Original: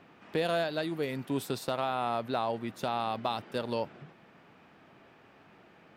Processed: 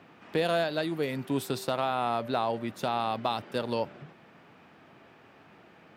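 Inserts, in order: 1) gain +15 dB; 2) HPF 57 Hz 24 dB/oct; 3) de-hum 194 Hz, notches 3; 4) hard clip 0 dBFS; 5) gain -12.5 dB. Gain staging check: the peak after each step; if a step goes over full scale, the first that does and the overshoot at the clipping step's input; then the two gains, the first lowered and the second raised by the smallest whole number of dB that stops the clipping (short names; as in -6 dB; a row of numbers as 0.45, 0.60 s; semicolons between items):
-3.0, -2.0, -2.0, -2.0, -14.5 dBFS; no overload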